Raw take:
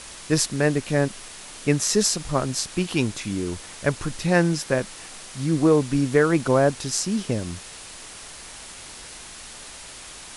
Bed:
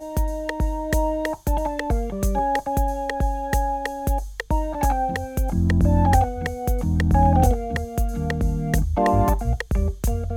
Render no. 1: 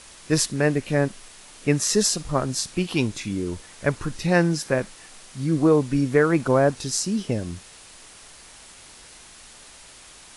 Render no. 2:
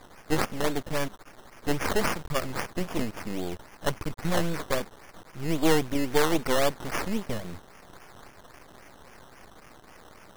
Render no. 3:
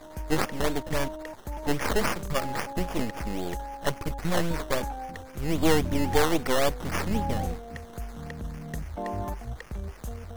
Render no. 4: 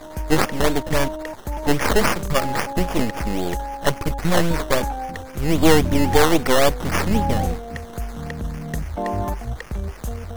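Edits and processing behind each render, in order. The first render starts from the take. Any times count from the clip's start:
noise print and reduce 6 dB
decimation with a swept rate 15×, swing 60% 3.7 Hz; half-wave rectifier
add bed -14 dB
trim +8 dB; peak limiter -1 dBFS, peak gain reduction 2 dB

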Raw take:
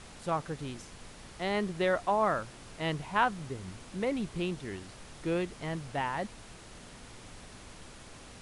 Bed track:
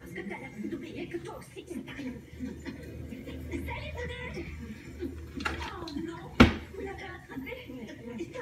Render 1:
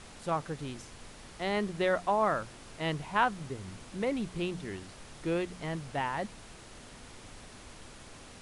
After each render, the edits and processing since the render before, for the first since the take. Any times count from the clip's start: de-hum 60 Hz, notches 3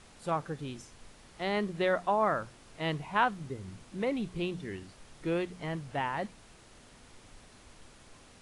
noise print and reduce 6 dB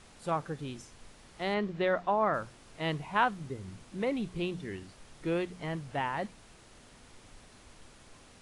1.54–2.34 s: distance through air 110 m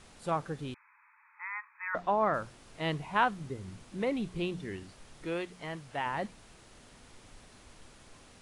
0.74–1.95 s: brick-wall FIR band-pass 840–2600 Hz; 5.25–6.06 s: bass shelf 410 Hz -8 dB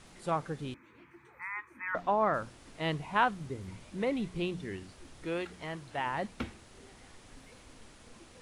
add bed track -20 dB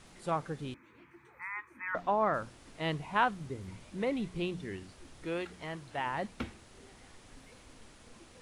trim -1 dB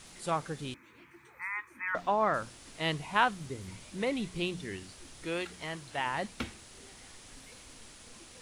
treble shelf 2.6 kHz +10.5 dB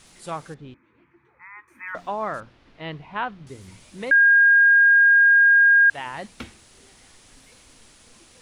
0.54–1.68 s: tape spacing loss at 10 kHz 36 dB; 2.40–3.47 s: distance through air 310 m; 4.11–5.90 s: bleep 1.62 kHz -11 dBFS

